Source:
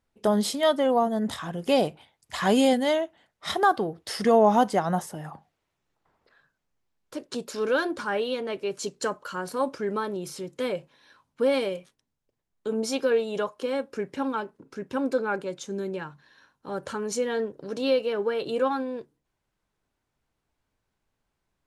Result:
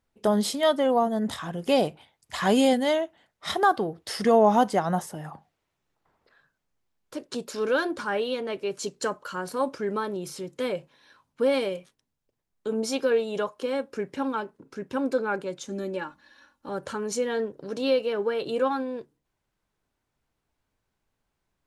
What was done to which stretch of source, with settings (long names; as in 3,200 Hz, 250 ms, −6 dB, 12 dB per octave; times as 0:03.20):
0:15.68–0:16.69: comb filter 3.5 ms, depth 81%